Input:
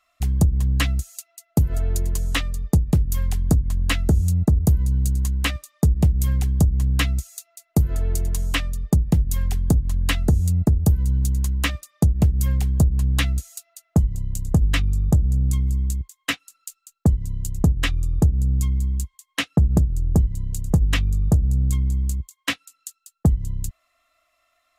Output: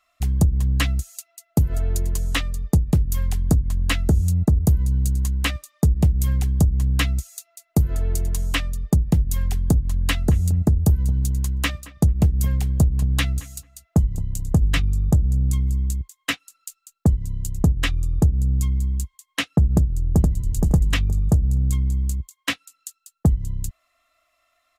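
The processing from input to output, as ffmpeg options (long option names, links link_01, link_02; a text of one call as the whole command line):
ffmpeg -i in.wav -filter_complex "[0:a]asettb=1/sr,asplit=3[link_01][link_02][link_03];[link_01]atrim=end=9.904[link_04];[link_02]atrim=start=9.9:end=14.85,asetpts=PTS-STARTPTS,afade=type=in:duration=0.004:curve=qsin,afade=type=out:start_time=4.946:duration=0.004:curve=qsin,asplit=2[link_05][link_06];[link_06]adelay=221,lowpass=frequency=1600:poles=1,volume=-17dB,asplit=2[link_07][link_08];[link_08]adelay=221,lowpass=frequency=1600:poles=1,volume=0.16[link_09];[link_05][link_07][link_09]amix=inputs=3:normalize=0,atrim=end_sample=218295[link_10];[link_03]atrim=start=14.846[link_11];[link_04][link_10]acrossfade=duration=0.004:curve1=hsin:curve2=qsin[link_12];[link_12][link_11]acrossfade=duration=0.004:curve1=qsin:curve2=hsin,asplit=2[link_13][link_14];[link_14]afade=type=in:start_time=19.74:duration=0.01,afade=type=out:start_time=20.44:duration=0.01,aecho=0:1:470|940|1410:0.707946|0.141589|0.0283178[link_15];[link_13][link_15]amix=inputs=2:normalize=0" out.wav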